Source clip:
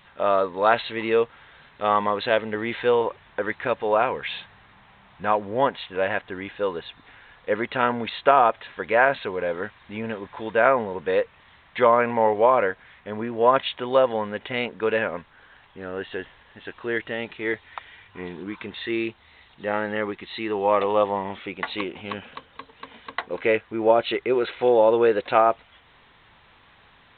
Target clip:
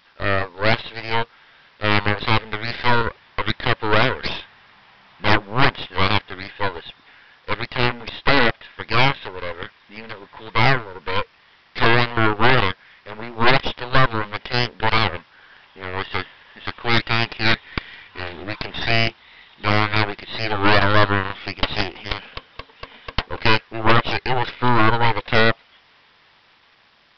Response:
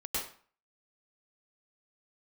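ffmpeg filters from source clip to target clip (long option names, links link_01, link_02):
-af "highpass=frequency=140:poles=1,tiltshelf=frequency=920:gain=-3.5,dynaudnorm=framelen=570:gausssize=5:maxgain=13dB,aeval=exprs='0.944*(cos(1*acos(clip(val(0)/0.944,-1,1)))-cos(1*PI/2))+0.335*(cos(4*acos(clip(val(0)/0.944,-1,1)))-cos(4*PI/2))+0.335*(cos(7*acos(clip(val(0)/0.944,-1,1)))-cos(7*PI/2))+0.422*(cos(8*acos(clip(val(0)/0.944,-1,1)))-cos(8*PI/2))':channel_layout=same,aresample=11025,acrusher=bits=7:mix=0:aa=0.000001,aresample=44100,volume=-7.5dB"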